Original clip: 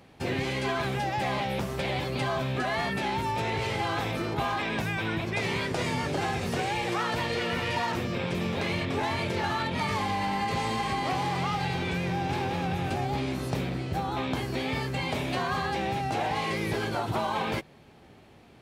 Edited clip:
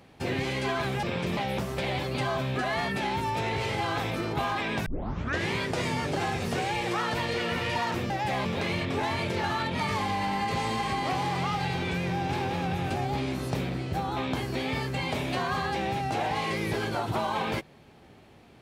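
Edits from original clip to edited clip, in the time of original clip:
0:01.03–0:01.38: swap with 0:08.11–0:08.45
0:04.87: tape start 0.65 s

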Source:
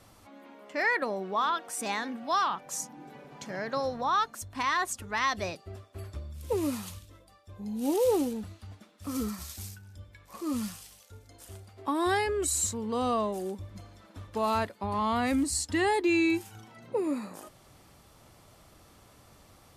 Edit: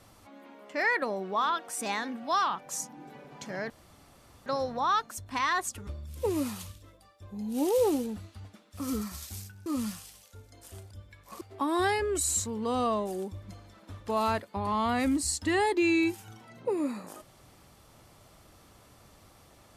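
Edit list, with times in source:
0:03.70: splice in room tone 0.76 s
0:05.11–0:06.14: remove
0:09.93–0:10.43: move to 0:11.68

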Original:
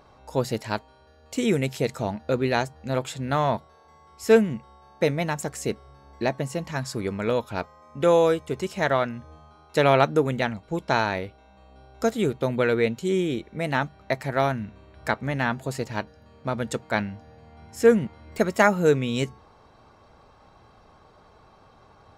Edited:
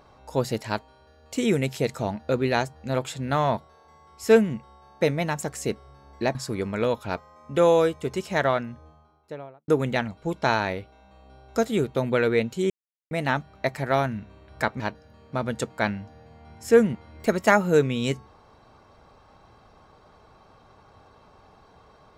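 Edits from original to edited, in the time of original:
0:06.35–0:06.81: remove
0:08.86–0:10.14: fade out and dull
0:13.16–0:13.57: silence
0:15.26–0:15.92: remove

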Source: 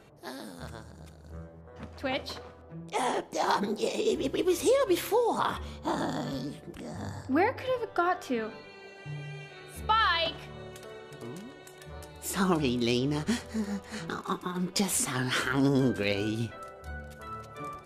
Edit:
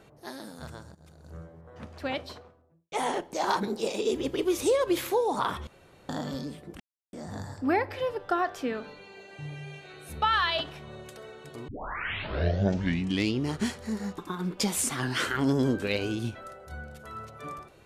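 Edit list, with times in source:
0:00.95–0:01.32: fade in equal-power, from −15.5 dB
0:02.01–0:02.92: fade out and dull
0:05.67–0:06.09: fill with room tone
0:06.80: splice in silence 0.33 s
0:11.35: tape start 1.80 s
0:13.85–0:14.34: remove

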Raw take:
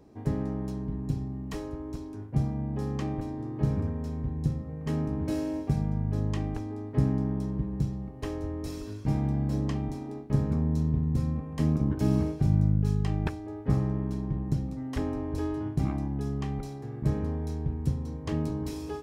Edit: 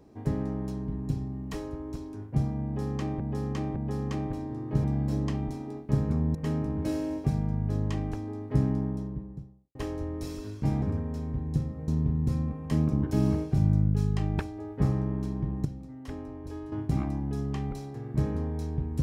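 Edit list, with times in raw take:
0:02.64–0:03.20: repeat, 3 plays
0:03.72–0:04.78: swap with 0:09.25–0:10.76
0:07.06–0:08.18: fade out and dull
0:14.53–0:15.60: clip gain −8 dB

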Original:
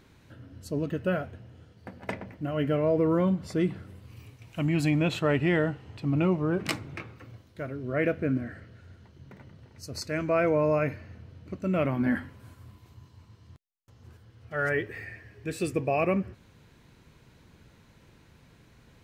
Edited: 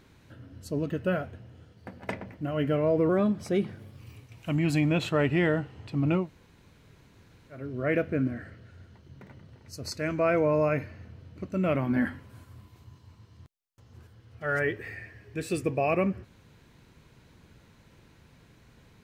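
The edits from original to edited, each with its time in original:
0:03.09–0:04.10: play speed 111%
0:06.32–0:07.67: fill with room tone, crossfade 0.16 s

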